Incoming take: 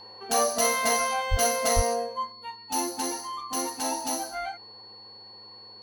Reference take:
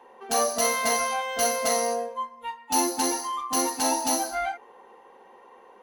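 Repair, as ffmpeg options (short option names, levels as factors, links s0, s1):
-filter_complex "[0:a]bandreject=f=108:t=h:w=4,bandreject=f=216:t=h:w=4,bandreject=f=324:t=h:w=4,bandreject=f=432:t=h:w=4,bandreject=f=4400:w=30,asplit=3[s0][s1][s2];[s0]afade=t=out:st=1.3:d=0.02[s3];[s1]highpass=f=140:w=0.5412,highpass=f=140:w=1.3066,afade=t=in:st=1.3:d=0.02,afade=t=out:st=1.42:d=0.02[s4];[s2]afade=t=in:st=1.42:d=0.02[s5];[s3][s4][s5]amix=inputs=3:normalize=0,asplit=3[s6][s7][s8];[s6]afade=t=out:st=1.75:d=0.02[s9];[s7]highpass=f=140:w=0.5412,highpass=f=140:w=1.3066,afade=t=in:st=1.75:d=0.02,afade=t=out:st=1.87:d=0.02[s10];[s8]afade=t=in:st=1.87:d=0.02[s11];[s9][s10][s11]amix=inputs=3:normalize=0,asetnsamples=n=441:p=0,asendcmd='2.32 volume volume 5dB',volume=1"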